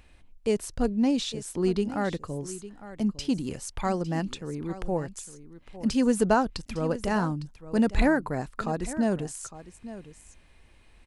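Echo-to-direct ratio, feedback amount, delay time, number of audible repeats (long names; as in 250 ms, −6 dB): −15.0 dB, repeats not evenly spaced, 856 ms, 1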